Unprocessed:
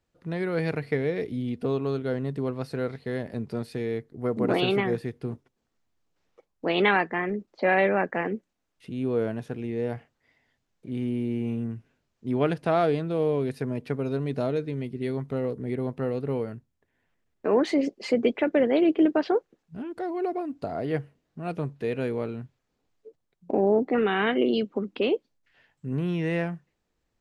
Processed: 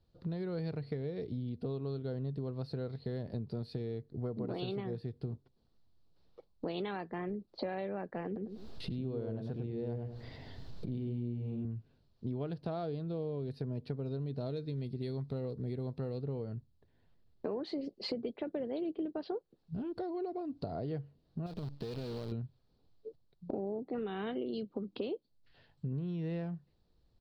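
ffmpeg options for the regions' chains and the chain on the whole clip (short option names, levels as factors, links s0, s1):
-filter_complex "[0:a]asettb=1/sr,asplit=3[s0][s1][s2];[s0]atrim=end=8.264[s3];[s1]atrim=start=8.26:end=11.65,asetpts=PTS-STARTPTS,afade=t=in:d=0.004:c=qsin,afade=t=out:st=3.386:d=0.004:c=qsin,acompressor=mode=upward:threshold=0.0224:ratio=2.5:attack=3.2:release=140:knee=2.83:detection=peak,asplit=2[s4][s5];[s5]adelay=100,lowpass=f=1200:p=1,volume=0.708,asplit=2[s6][s7];[s7]adelay=100,lowpass=f=1200:p=1,volume=0.31,asplit=2[s8][s9];[s9]adelay=100,lowpass=f=1200:p=1,volume=0.31,asplit=2[s10][s11];[s11]adelay=100,lowpass=f=1200:p=1,volume=0.31[s12];[s4][s6][s8][s10][s12]amix=inputs=5:normalize=0,atrim=end_sample=149499[s13];[s2]atrim=start=11.646[s14];[s3][s13]acrossfade=d=0.004:c1=hsin:c2=qsin[s15];[s15][s14]acrossfade=d=0.004:c1=qsin:c2=hsin,asettb=1/sr,asplit=3[s16][s17][s18];[s16]atrim=end=14.464[s19];[s17]atrim=start=14.46:end=16.18,asetpts=PTS-STARTPTS,afade=t=in:d=0.004:c=qsin,afade=t=out:st=1.716:d=0.004:c=qsin,highshelf=f=2200:g=8.5,bandreject=f=3000:w=14[s20];[s18]atrim=start=16.176[s21];[s19][s20]acrossfade=d=0.004:c1=hsin:c2=qsin[s22];[s22][s21]acrossfade=d=0.004:c1=qsin:c2=hsin,asettb=1/sr,asplit=3[s23][s24][s25];[s23]atrim=end=21.464[s26];[s24]atrim=start=21.46:end=22.32,asetpts=PTS-STARTPTS,afade=t=in:d=0.004:c=qsin,afade=t=out:st=0.856:d=0.004:c=qsin,acompressor=threshold=0.0158:ratio=12:attack=3.2:release=140:knee=1:detection=peak,acrusher=bits=8:dc=4:mix=0:aa=0.000001[s27];[s25]atrim=start=22.316[s28];[s26][s27]acrossfade=d=0.004:c1=hsin:c2=qsin[s29];[s29][s28]acrossfade=d=0.004:c1=qsin:c2=hsin,firequalizer=gain_entry='entry(110,0);entry(260,-8);entry(370,-7);entry(2100,-19);entry(4300,-2);entry(6400,-22)':delay=0.05:min_phase=1,acompressor=threshold=0.00562:ratio=6,volume=2.82"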